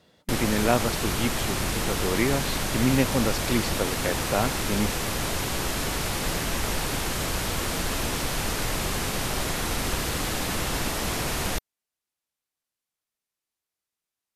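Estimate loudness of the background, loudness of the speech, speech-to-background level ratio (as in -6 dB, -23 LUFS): -27.5 LUFS, -28.0 LUFS, -0.5 dB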